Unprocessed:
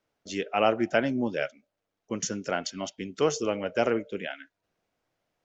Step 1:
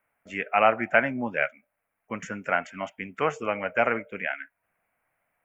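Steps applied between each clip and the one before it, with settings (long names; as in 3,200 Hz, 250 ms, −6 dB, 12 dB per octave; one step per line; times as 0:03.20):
drawn EQ curve 240 Hz 0 dB, 360 Hz −6 dB, 690 Hz +6 dB, 2,300 Hz +12 dB, 4,100 Hz −20 dB, 6,200 Hz −16 dB, 9,700 Hz +11 dB
level −2 dB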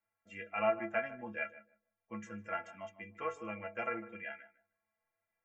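stiff-string resonator 100 Hz, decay 0.34 s, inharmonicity 0.03
feedback echo with a low-pass in the loop 153 ms, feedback 19%, low-pass 1,300 Hz, level −14 dB
level −3 dB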